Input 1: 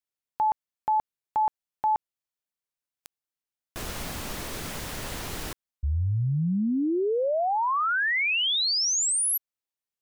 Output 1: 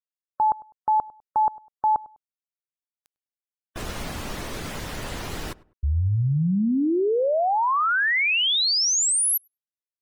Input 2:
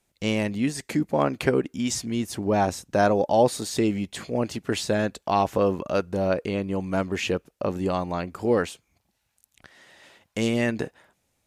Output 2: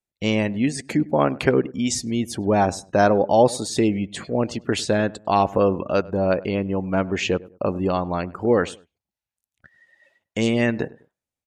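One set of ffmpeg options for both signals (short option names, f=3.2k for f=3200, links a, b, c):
-filter_complex "[0:a]afftdn=nr=22:nf=-44,asplit=2[a][b];[b]adelay=101,lowpass=f=1.3k:p=1,volume=-20dB,asplit=2[c][d];[d]adelay=101,lowpass=f=1.3k:p=1,volume=0.31[e];[a][c][e]amix=inputs=3:normalize=0,volume=3.5dB"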